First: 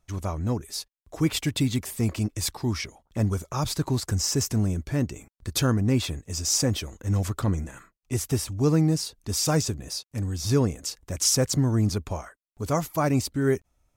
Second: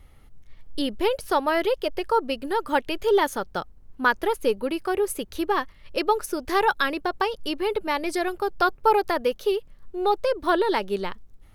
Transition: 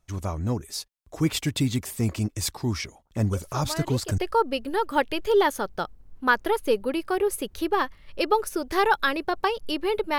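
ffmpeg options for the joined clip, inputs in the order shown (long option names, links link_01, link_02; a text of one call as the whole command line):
ffmpeg -i cue0.wav -i cue1.wav -filter_complex "[1:a]asplit=2[link_01][link_02];[0:a]apad=whole_dur=10.18,atrim=end=10.18,atrim=end=4.182[link_03];[link_02]atrim=start=1.948:end=7.95[link_04];[link_01]atrim=start=1.1:end=1.95,asetpts=PTS-STARTPTS,volume=-11.5dB,afade=type=in:duration=0.004:curve=hsin,afade=type=out:start_time=0.846:duration=0.004:curve=hsin,adelay=146853S[link_05];[link_03][link_04]acrossfade=duration=0.004:curve1=hsin:curve2=hsin[link_06];[link_06][link_05]amix=inputs=2:normalize=0" out.wav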